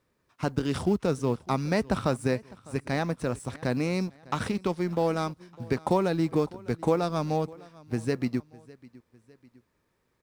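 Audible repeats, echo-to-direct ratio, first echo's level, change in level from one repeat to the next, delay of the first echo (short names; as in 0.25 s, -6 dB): 2, -21.0 dB, -22.0 dB, -6.0 dB, 0.604 s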